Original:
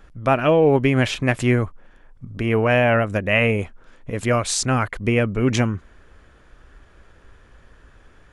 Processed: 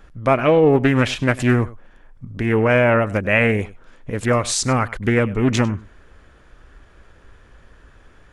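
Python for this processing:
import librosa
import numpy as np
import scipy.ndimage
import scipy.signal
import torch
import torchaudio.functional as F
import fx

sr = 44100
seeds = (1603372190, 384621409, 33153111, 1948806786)

y = x + 10.0 ** (-19.5 / 20.0) * np.pad(x, (int(99 * sr / 1000.0), 0))[:len(x)]
y = fx.doppler_dist(y, sr, depth_ms=0.32)
y = F.gain(torch.from_numpy(y), 1.5).numpy()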